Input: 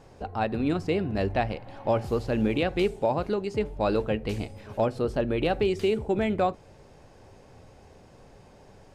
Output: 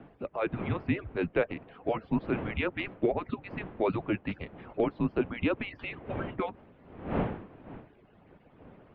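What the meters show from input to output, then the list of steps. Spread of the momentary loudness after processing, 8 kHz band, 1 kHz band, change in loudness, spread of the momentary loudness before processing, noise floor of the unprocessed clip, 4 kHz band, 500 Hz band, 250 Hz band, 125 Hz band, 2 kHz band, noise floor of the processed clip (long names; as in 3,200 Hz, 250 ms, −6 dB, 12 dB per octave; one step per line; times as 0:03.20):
11 LU, can't be measured, −7.0 dB, −5.0 dB, 7 LU, −53 dBFS, −8.0 dB, −6.0 dB, −3.5 dB, −4.5 dB, −1.0 dB, −60 dBFS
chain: harmonic-percussive split with one part muted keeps percussive
wind on the microphone 490 Hz −39 dBFS
single-sideband voice off tune −210 Hz 300–3,300 Hz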